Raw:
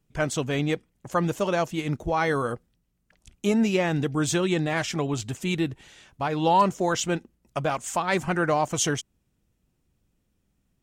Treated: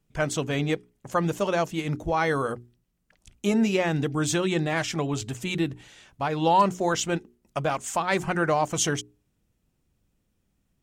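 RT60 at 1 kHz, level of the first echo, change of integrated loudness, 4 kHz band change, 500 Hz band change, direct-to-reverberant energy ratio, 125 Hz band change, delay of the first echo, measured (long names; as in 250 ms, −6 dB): no reverb audible, no echo audible, −0.5 dB, 0.0 dB, −0.5 dB, no reverb audible, −0.5 dB, no echo audible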